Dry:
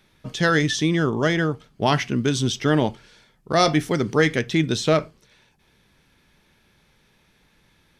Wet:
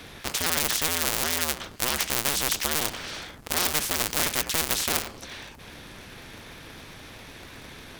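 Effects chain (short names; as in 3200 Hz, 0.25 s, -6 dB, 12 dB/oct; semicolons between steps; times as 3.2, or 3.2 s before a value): cycle switcher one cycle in 2, inverted; spectral compressor 4:1; gain +3 dB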